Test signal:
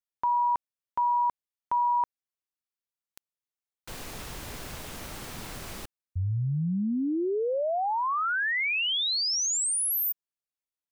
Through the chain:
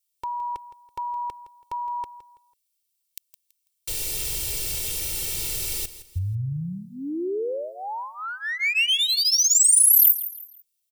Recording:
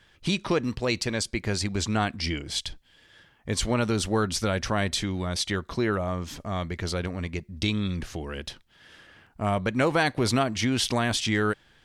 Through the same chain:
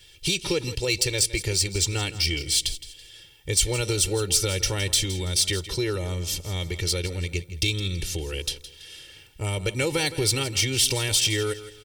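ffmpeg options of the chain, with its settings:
-filter_complex "[0:a]equalizer=f=1100:t=o:w=1.7:g=-11,bandreject=f=6600:w=14,aecho=1:1:2.2:0.99,asplit=2[s0][s1];[s1]acompressor=threshold=0.0224:ratio=6:attack=82:release=81:knee=1:detection=peak,volume=1.41[s2];[s0][s2]amix=inputs=2:normalize=0,aexciter=amount=1.5:drive=9.7:freq=2300,asplit=2[s3][s4];[s4]aecho=0:1:165|330|495:0.188|0.0603|0.0193[s5];[s3][s5]amix=inputs=2:normalize=0,volume=0.473"

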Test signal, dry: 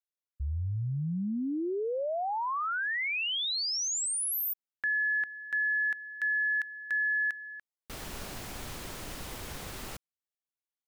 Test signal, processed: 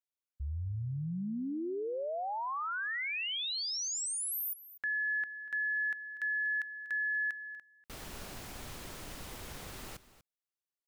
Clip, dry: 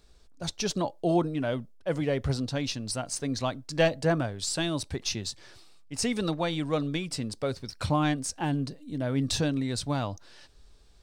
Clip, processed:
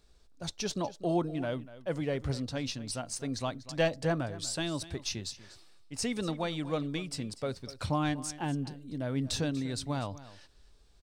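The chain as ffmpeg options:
-af "aecho=1:1:242:0.15,volume=0.596"

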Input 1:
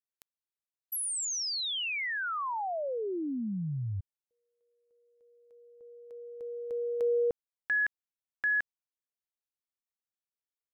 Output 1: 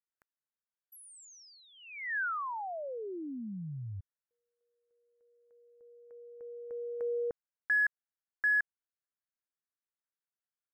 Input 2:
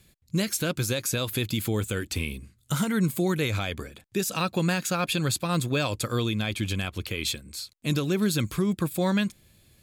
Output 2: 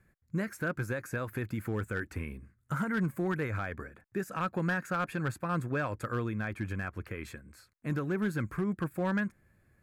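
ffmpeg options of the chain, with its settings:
-af "highshelf=f=2400:t=q:w=3:g=-13,volume=7.5,asoftclip=hard,volume=0.133,volume=0.473"

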